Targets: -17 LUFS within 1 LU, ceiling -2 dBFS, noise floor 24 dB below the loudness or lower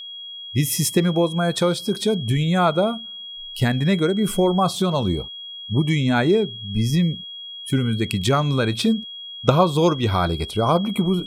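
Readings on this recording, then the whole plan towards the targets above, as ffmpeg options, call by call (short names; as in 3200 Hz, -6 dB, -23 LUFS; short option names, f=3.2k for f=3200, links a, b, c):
steady tone 3300 Hz; tone level -33 dBFS; loudness -21.0 LUFS; peak -1.5 dBFS; loudness target -17.0 LUFS
-> -af "bandreject=f=3.3k:w=30"
-af "volume=4dB,alimiter=limit=-2dB:level=0:latency=1"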